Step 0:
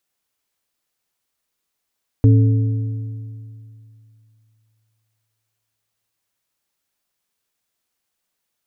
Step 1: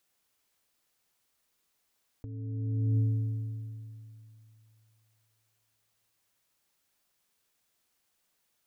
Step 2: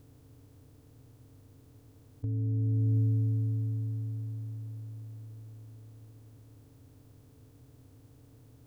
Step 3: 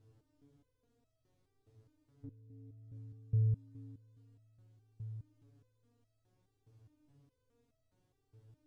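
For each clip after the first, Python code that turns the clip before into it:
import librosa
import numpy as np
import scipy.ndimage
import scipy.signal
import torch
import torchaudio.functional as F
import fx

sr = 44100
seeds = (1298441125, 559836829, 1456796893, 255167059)

y1 = fx.over_compress(x, sr, threshold_db=-26.0, ratio=-1.0)
y1 = y1 * 10.0 ** (-5.5 / 20.0)
y2 = fx.bin_compress(y1, sr, power=0.4)
y3 = fx.air_absorb(y2, sr, metres=54.0)
y3 = fx.resonator_held(y3, sr, hz=4.8, low_hz=110.0, high_hz=650.0)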